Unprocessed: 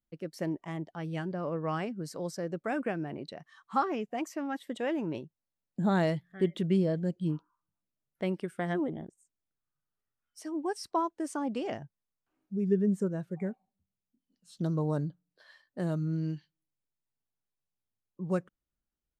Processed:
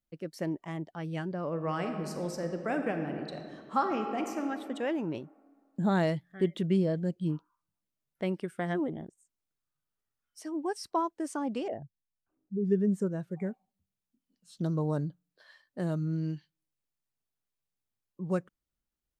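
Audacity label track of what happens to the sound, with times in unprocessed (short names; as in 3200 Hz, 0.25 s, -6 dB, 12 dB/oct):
1.480000	4.490000	reverb throw, RT60 2.3 s, DRR 5 dB
11.680000	12.650000	formant sharpening exponent 2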